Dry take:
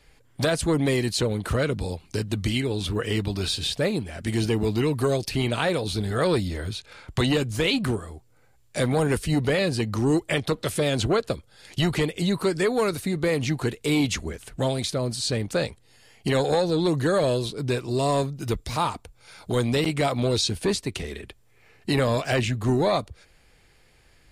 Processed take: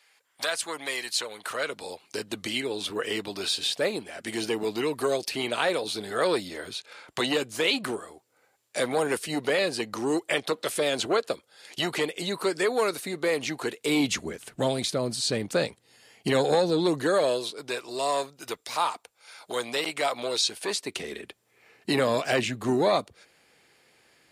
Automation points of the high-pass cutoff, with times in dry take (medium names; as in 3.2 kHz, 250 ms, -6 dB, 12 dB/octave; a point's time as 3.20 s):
1.30 s 950 Hz
2.28 s 380 Hz
13.75 s 380 Hz
14.16 s 180 Hz
16.63 s 180 Hz
17.65 s 590 Hz
20.67 s 590 Hz
21.09 s 230 Hz